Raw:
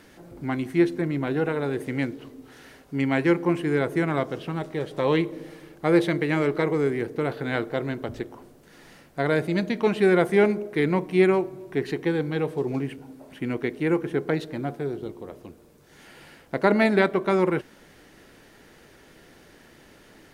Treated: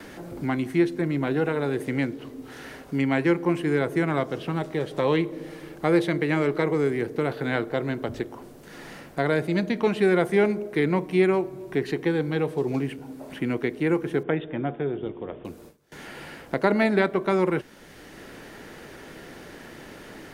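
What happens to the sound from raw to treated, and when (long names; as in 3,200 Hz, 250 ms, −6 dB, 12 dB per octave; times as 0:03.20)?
0:14.23–0:15.45: Chebyshev low-pass filter 3,600 Hz, order 10
whole clip: noise gate with hold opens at −45 dBFS; multiband upward and downward compressor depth 40%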